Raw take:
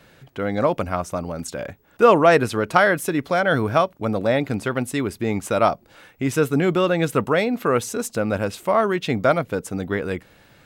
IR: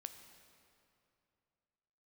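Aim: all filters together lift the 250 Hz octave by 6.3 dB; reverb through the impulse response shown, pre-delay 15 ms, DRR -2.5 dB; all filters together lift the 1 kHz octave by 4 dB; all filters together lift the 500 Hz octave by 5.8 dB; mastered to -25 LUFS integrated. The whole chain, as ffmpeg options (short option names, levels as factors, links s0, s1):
-filter_complex "[0:a]equalizer=f=250:t=o:g=6.5,equalizer=f=500:t=o:g=4.5,equalizer=f=1000:t=o:g=3.5,asplit=2[s0][s1];[1:a]atrim=start_sample=2205,adelay=15[s2];[s1][s2]afir=irnorm=-1:irlink=0,volume=2.24[s3];[s0][s3]amix=inputs=2:normalize=0,volume=0.211"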